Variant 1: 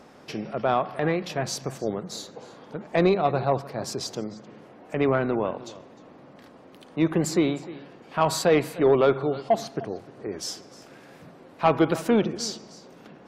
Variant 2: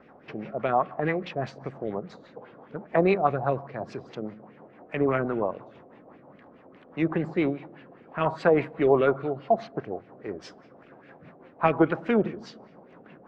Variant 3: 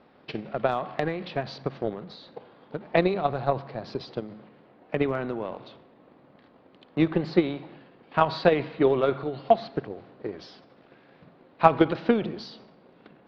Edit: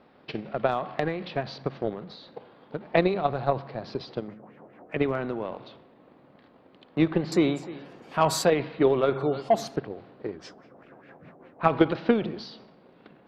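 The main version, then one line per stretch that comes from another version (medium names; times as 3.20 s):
3
4.28–4.96 s: from 2
7.32–8.50 s: from 1
9.13–9.76 s: from 1
10.36–11.65 s: from 2, crossfade 0.10 s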